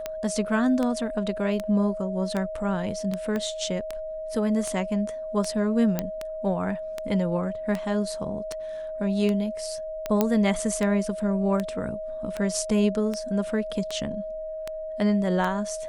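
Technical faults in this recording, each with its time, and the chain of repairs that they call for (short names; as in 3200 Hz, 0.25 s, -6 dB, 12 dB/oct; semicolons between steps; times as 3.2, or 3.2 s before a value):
tick 78 rpm -15 dBFS
tone 630 Hz -31 dBFS
3.36 pop -17 dBFS
5.99 pop -11 dBFS
10.21 pop -8 dBFS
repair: de-click; notch 630 Hz, Q 30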